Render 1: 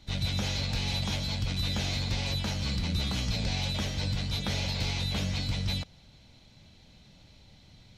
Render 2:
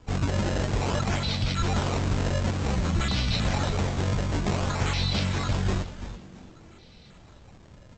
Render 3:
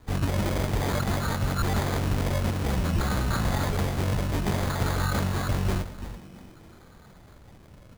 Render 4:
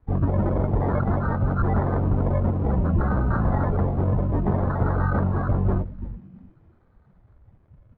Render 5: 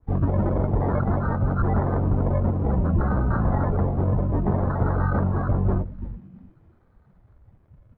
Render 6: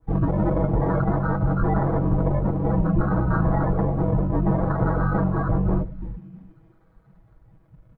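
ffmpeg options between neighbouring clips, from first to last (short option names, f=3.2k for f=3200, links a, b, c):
-filter_complex "[0:a]aresample=16000,acrusher=samples=8:mix=1:aa=0.000001:lfo=1:lforange=12.8:lforate=0.54,aresample=44100,asplit=5[a][b][c][d][e];[b]adelay=335,afreqshift=-140,volume=-11.5dB[f];[c]adelay=670,afreqshift=-280,volume=-20.9dB[g];[d]adelay=1005,afreqshift=-420,volume=-30.2dB[h];[e]adelay=1340,afreqshift=-560,volume=-39.6dB[i];[a][f][g][h][i]amix=inputs=5:normalize=0,volume=4.5dB"
-af "acrusher=samples=16:mix=1:aa=0.000001"
-af "lowpass=1.6k,afftdn=nr=16:nf=-34,volume=4.5dB"
-af "adynamicequalizer=threshold=0.00891:dfrequency=1800:dqfactor=0.7:tfrequency=1800:tqfactor=0.7:attack=5:release=100:ratio=0.375:range=2:mode=cutabove:tftype=highshelf"
-af "aecho=1:1:6.2:0.82"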